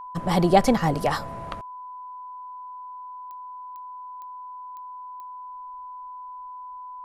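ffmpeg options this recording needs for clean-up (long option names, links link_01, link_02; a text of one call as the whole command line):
ffmpeg -i in.wav -af "adeclick=threshold=4,bandreject=frequency=1000:width=30" out.wav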